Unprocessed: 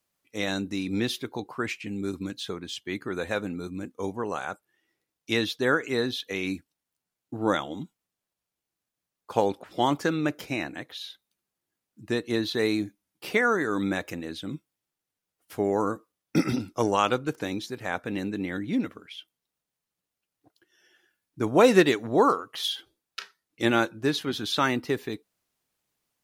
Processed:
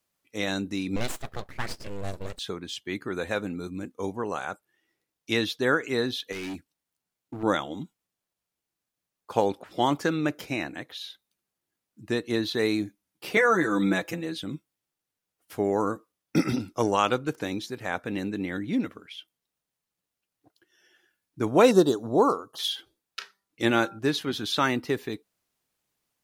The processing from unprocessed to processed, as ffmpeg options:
-filter_complex "[0:a]asettb=1/sr,asplit=3[a][b][c];[a]atrim=end=0.964[d];[b]atrim=start=0.96:end=2.39,asetpts=PTS-STARTPTS,afade=t=in:d=0.004:c=qsin,afade=t=out:st=1.426:d=0.004:c=qsin,aeval=exprs='abs(val(0))':c=same[e];[c]atrim=start=2.386[f];[d][e]acrossfade=d=0.004:c1=hsin:c2=qsin[g];[g][f]acrossfade=d=0.004:c1=qsin:c2=hsin,asettb=1/sr,asplit=3[h][i][j];[h]atrim=end=6.324[k];[i]atrim=start=6.32:end=7.43,asetpts=PTS-STARTPTS,afade=t=in:d=0.004:c=qsin,afade=t=out:st=1.106:d=0.004:c=qsin,volume=32dB,asoftclip=hard,volume=-32dB[l];[j]atrim=start=7.426[m];[k][l]acrossfade=d=0.004:c1=hsin:c2=qsin[n];[n][m]acrossfade=d=0.004:c1=qsin:c2=hsin,asettb=1/sr,asplit=3[o][p][q];[o]atrim=end=13.364[r];[p]atrim=start=13.36:end=14.44,asetpts=PTS-STARTPTS,afade=t=in:d=0.004:c=qsin,afade=t=out:st=1.076:d=0.004:c=qsin,aecho=1:1:6:0.93,atrim=end_sample=47628[s];[q]atrim=start=14.436[t];[r][s]acrossfade=d=0.004:c1=hsin:c2=qsin[u];[u][t]acrossfade=d=0.004:c1=qsin:c2=hsin,asettb=1/sr,asplit=3[v][w][x];[v]atrim=end=21.714[y];[w]atrim=start=21.71:end=22.59,asetpts=PTS-STARTPTS,afade=t=in:d=0.004:c=qsin,afade=t=out:st=0.876:d=0.004:c=qsin,asuperstop=centerf=2200:order=4:qfactor=0.77[z];[x]atrim=start=22.586[aa];[y][z]acrossfade=d=0.004:c1=hsin:c2=qsin[ab];[ab][aa]acrossfade=d=0.004:c1=qsin:c2=hsin,asettb=1/sr,asplit=3[ac][ad][ae];[ac]atrim=end=23.204[af];[ad]atrim=start=23.2:end=23.99,asetpts=PTS-STARTPTS,afade=t=in:d=0.004:c=qsin,afade=t=out:st=0.786:d=0.004:c=qsin,bandreject=f=196.9:t=h:w=4,bandreject=f=393.8:t=h:w=4,bandreject=f=590.7:t=h:w=4,bandreject=f=787.6:t=h:w=4,bandreject=f=984.5:t=h:w=4,bandreject=f=1.1814k:t=h:w=4,bandreject=f=1.3783k:t=h:w=4[ag];[ae]atrim=start=23.986[ah];[af][ag]acrossfade=d=0.004:c1=hsin:c2=qsin[ai];[ai][ah]acrossfade=d=0.004:c1=qsin:c2=hsin"

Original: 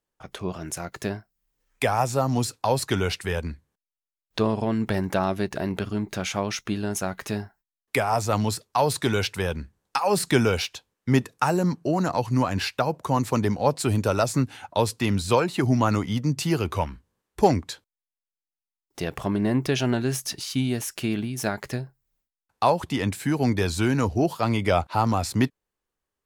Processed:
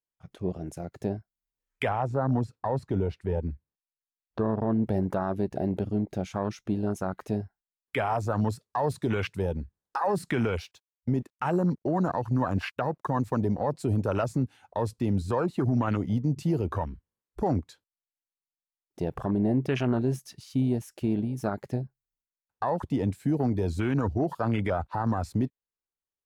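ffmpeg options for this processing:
-filter_complex "[0:a]asettb=1/sr,asplit=3[a][b][c];[a]atrim=end=1.894[d];[b]atrim=start=1.89:end=4.83,asetpts=PTS-STARTPTS,afade=t=in:d=0.004:c=qsin,afade=t=out:st=2.936:d=0.004:c=qsin,lowpass=f=1.7k:p=1[e];[c]atrim=start=4.826[f];[d][e]acrossfade=d=0.004:c1=hsin:c2=qsin[g];[g][f]acrossfade=d=0.004:c1=qsin:c2=hsin,asettb=1/sr,asplit=3[h][i][j];[h]atrim=end=10.714[k];[i]atrim=start=10.71:end=13.48,asetpts=PTS-STARTPTS,afade=t=in:d=0.004:c=qsin,afade=t=out:st=2.766:d=0.004:c=qsin,aeval=exprs='sgn(val(0))*max(abs(val(0))-0.00251,0)':c=same[l];[j]atrim=start=13.476[m];[k][l]acrossfade=d=0.004:c1=hsin:c2=qsin[n];[n][m]acrossfade=d=0.004:c1=qsin:c2=hsin,afwtdn=0.0355,alimiter=limit=-17.5dB:level=0:latency=1:release=48"

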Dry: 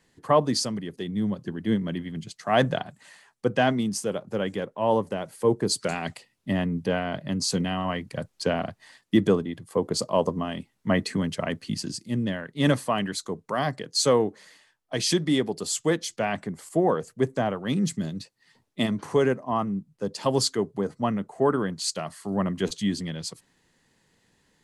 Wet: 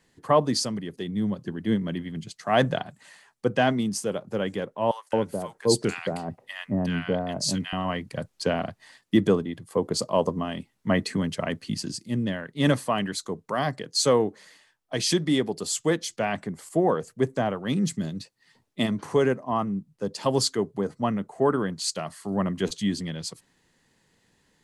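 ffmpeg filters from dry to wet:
-filter_complex "[0:a]asettb=1/sr,asplit=3[a][b][c];[a]atrim=end=4.914[d];[b]atrim=start=4.91:end=7.73,asetpts=PTS-STARTPTS,afade=t=in:d=0.004:c=qsin,afade=t=out:st=2.816:d=0.004:c=qsin,acrossover=split=1100[e][f];[e]adelay=220[g];[g][f]amix=inputs=2:normalize=0,atrim=end_sample=124362[h];[c]atrim=start=7.726[i];[d][h]acrossfade=d=0.004:c1=hsin:c2=qsin[j];[j][i]acrossfade=d=0.004:c1=qsin:c2=hsin"

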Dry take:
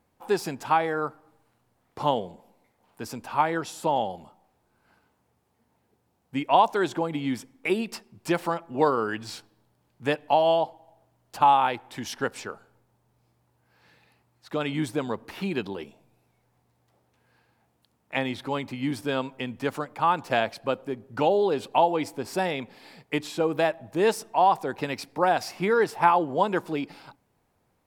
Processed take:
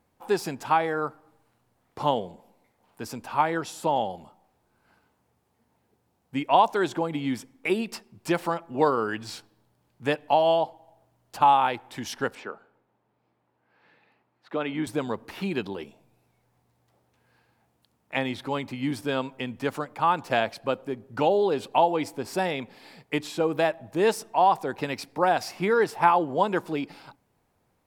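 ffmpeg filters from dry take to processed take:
-filter_complex "[0:a]asettb=1/sr,asplit=3[a][b][c];[a]atrim=end=12.354[d];[b]atrim=start=12.35:end=14.87,asetpts=PTS-STARTPTS,afade=t=in:d=0.004:c=qsin,afade=t=out:st=2.516:d=0.004:c=qsin,acrossover=split=170 3400:gain=0.141 1 0.126[e][f][g];[e][f][g]amix=inputs=3:normalize=0[h];[c]atrim=start=14.866[i];[d][h]acrossfade=d=0.004:c1=hsin:c2=qsin[j];[j][i]acrossfade=d=0.004:c1=qsin:c2=hsin"

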